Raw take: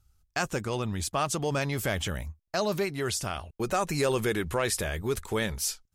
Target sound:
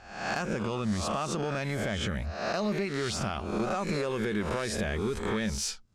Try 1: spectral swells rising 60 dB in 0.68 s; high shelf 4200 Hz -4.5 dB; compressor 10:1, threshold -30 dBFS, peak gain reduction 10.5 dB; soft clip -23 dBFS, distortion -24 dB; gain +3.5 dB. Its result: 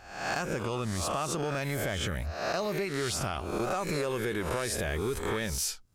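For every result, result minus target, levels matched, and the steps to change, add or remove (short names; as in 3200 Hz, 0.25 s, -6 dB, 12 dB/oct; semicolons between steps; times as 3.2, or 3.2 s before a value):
250 Hz band -3.5 dB; 8000 Hz band +3.5 dB
add after compressor: bell 210 Hz +10 dB 0.23 oct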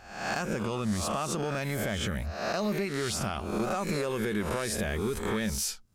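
8000 Hz band +2.5 dB
add after spectral swells: LPF 6700 Hz 12 dB/oct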